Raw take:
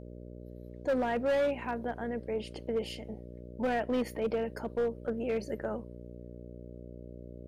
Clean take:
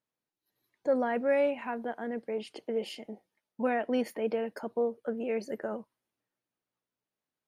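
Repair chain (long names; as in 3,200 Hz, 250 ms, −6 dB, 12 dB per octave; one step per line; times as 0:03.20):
clipped peaks rebuilt −24.5 dBFS
hum removal 60.2 Hz, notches 10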